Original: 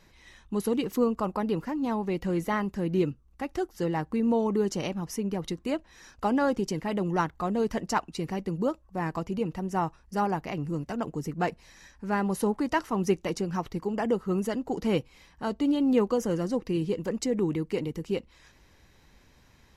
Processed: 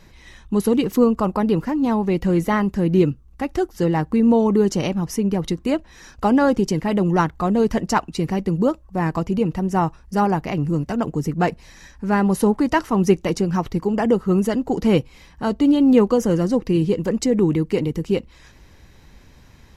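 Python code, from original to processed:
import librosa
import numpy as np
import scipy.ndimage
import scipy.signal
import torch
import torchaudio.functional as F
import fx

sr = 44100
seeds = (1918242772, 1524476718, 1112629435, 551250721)

y = fx.low_shelf(x, sr, hz=270.0, db=5.5)
y = y * 10.0 ** (7.0 / 20.0)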